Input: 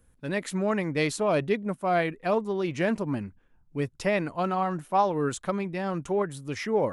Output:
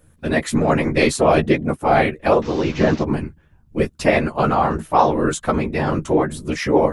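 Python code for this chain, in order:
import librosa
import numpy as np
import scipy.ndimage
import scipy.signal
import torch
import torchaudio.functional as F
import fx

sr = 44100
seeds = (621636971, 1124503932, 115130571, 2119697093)

y = fx.delta_mod(x, sr, bps=32000, step_db=-38.5, at=(2.42, 3.03))
y = fx.whisperise(y, sr, seeds[0])
y = fx.doubler(y, sr, ms=13.0, db=-6.5)
y = F.gain(torch.from_numpy(y), 8.5).numpy()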